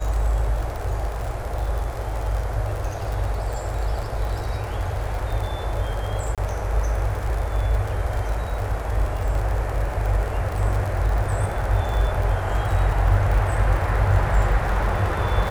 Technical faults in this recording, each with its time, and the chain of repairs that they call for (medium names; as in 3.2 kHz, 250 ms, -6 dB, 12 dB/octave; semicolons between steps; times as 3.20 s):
crackle 57 per s -27 dBFS
6.35–6.38 s: dropout 27 ms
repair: de-click; interpolate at 6.35 s, 27 ms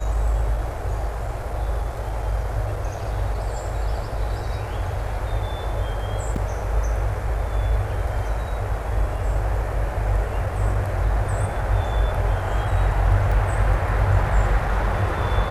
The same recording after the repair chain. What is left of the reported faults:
nothing left